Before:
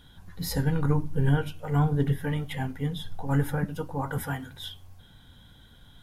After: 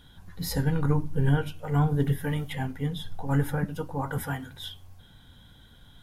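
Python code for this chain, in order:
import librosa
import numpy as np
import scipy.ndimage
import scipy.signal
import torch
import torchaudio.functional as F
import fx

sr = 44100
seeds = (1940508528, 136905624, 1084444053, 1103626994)

y = fx.high_shelf(x, sr, hz=fx.line((1.89, 10000.0), (2.48, 6400.0)), db=8.0, at=(1.89, 2.48), fade=0.02)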